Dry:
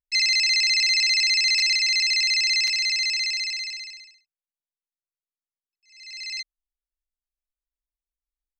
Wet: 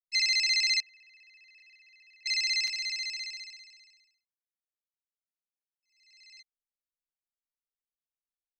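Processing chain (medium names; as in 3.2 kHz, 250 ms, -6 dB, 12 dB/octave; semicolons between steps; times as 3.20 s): 0.80–2.26 s: vowel filter e; upward expansion 2.5:1, over -31 dBFS; trim -4.5 dB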